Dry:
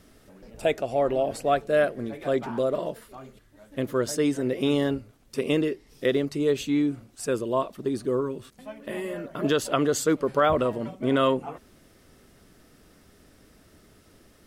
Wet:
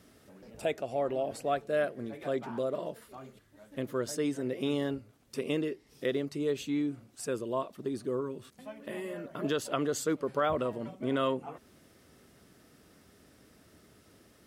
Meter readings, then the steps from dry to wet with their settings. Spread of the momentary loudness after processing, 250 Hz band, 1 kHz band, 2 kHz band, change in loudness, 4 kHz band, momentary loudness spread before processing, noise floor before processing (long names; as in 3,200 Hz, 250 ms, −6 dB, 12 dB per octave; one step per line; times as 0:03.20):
12 LU, −7.5 dB, −7.5 dB, −7.5 dB, −7.5 dB, −7.5 dB, 12 LU, −58 dBFS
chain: high-pass filter 73 Hz
in parallel at −1.5 dB: downward compressor, threshold −38 dBFS, peak gain reduction 19.5 dB
on the sum: level −8.5 dB